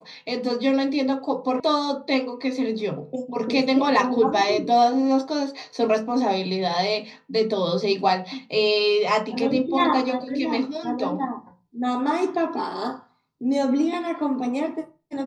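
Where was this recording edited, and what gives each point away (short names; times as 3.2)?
1.6 sound cut off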